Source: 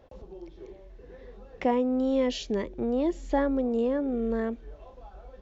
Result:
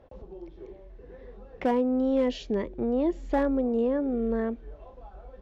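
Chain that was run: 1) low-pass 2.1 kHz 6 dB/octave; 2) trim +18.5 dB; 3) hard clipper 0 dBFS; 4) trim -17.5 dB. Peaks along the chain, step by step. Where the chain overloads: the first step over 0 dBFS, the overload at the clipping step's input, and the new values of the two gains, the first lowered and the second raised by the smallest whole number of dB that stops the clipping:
-14.5 dBFS, +4.0 dBFS, 0.0 dBFS, -17.5 dBFS; step 2, 4.0 dB; step 2 +14.5 dB, step 4 -13.5 dB

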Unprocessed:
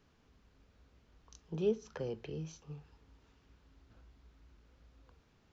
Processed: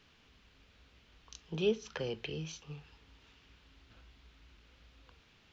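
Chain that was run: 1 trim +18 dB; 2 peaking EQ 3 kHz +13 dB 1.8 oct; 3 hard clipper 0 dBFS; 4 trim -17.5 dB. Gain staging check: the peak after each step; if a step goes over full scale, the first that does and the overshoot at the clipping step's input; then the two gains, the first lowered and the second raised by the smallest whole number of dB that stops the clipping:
-3.0 dBFS, -2.0 dBFS, -2.0 dBFS, -19.5 dBFS; nothing clips

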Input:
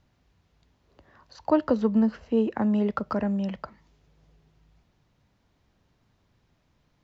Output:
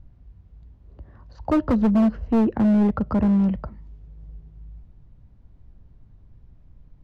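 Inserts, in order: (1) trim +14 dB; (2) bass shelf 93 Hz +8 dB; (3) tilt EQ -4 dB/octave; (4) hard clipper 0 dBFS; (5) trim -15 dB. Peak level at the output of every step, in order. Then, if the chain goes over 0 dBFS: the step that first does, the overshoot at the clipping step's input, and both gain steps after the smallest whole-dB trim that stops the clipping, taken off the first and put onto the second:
+3.0 dBFS, +3.5 dBFS, +10.0 dBFS, 0.0 dBFS, -15.0 dBFS; step 1, 10.0 dB; step 1 +4 dB, step 5 -5 dB

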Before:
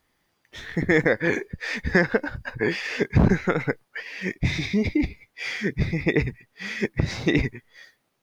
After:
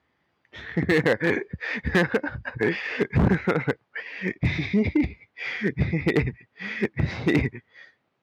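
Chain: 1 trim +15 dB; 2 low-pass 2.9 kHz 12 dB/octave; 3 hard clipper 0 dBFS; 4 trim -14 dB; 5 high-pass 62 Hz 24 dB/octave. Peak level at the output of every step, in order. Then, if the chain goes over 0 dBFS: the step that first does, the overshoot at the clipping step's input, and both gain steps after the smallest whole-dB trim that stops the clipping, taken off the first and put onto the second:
+9.0 dBFS, +8.5 dBFS, 0.0 dBFS, -14.0 dBFS, -7.0 dBFS; step 1, 8.5 dB; step 1 +6 dB, step 4 -5 dB

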